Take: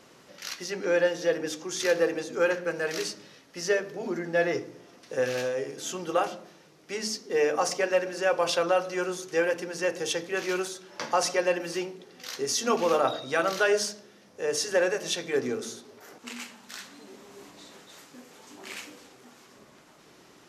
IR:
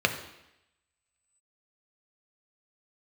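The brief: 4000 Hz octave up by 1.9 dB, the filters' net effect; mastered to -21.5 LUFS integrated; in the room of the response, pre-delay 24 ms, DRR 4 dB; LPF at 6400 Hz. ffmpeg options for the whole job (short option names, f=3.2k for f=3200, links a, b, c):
-filter_complex "[0:a]lowpass=6.4k,equalizer=f=4k:t=o:g=3.5,asplit=2[a][b];[1:a]atrim=start_sample=2205,adelay=24[c];[b][c]afir=irnorm=-1:irlink=0,volume=-17.5dB[d];[a][d]amix=inputs=2:normalize=0,volume=5dB"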